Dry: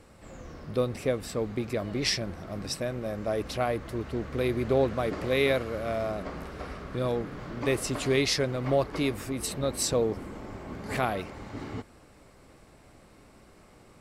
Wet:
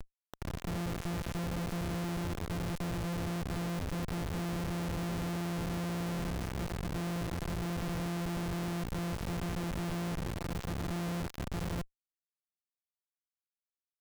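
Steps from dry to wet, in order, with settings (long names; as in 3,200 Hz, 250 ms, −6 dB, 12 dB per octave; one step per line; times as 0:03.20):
samples sorted by size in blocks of 256 samples
high-pass filter 41 Hz 24 dB per octave
in parallel at −2 dB: downward compressor 12 to 1, threshold −33 dBFS, peak gain reduction 15 dB
on the sum: mains-hum notches 50/100/150 Hz
comparator with hysteresis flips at −38 dBFS
level −6 dB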